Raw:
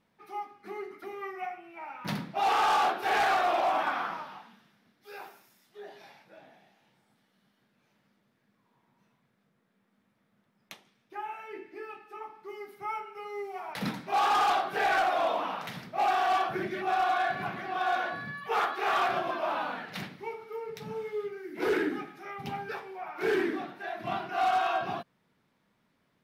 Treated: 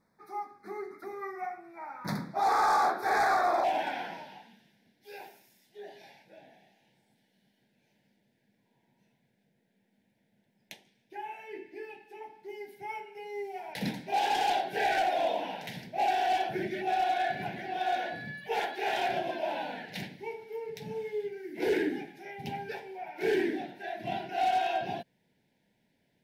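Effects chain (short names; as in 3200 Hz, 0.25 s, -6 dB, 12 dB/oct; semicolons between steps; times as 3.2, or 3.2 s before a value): Butterworth band-stop 2900 Hz, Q 1.6, from 3.63 s 1200 Hz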